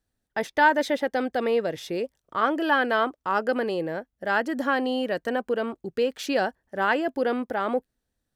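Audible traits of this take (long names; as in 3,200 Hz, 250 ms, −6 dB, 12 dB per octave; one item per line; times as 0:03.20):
background noise floor −82 dBFS
spectral slope −2.0 dB per octave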